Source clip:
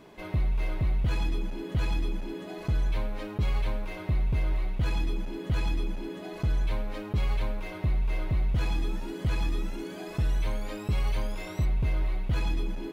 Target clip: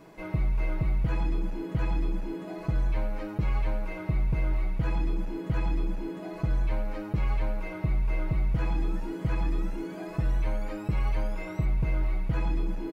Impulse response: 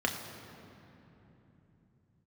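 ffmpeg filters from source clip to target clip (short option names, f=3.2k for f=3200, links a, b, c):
-filter_complex "[0:a]acrossover=split=3300[a][b];[b]acompressor=threshold=-59dB:ratio=4:attack=1:release=60[c];[a][c]amix=inputs=2:normalize=0,equalizer=f=3.4k:w=2.6:g=-7.5,aecho=1:1:6.2:0.49"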